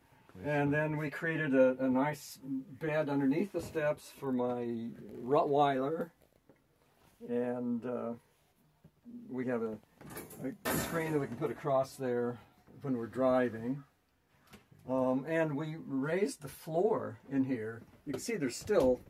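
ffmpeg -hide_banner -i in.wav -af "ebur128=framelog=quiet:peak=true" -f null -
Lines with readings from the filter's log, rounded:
Integrated loudness:
  I:         -34.2 LUFS
  Threshold: -45.0 LUFS
Loudness range:
  LRA:         6.9 LU
  Threshold: -55.4 LUFS
  LRA low:   -39.8 LUFS
  LRA high:  -32.9 LUFS
True peak:
  Peak:      -15.4 dBFS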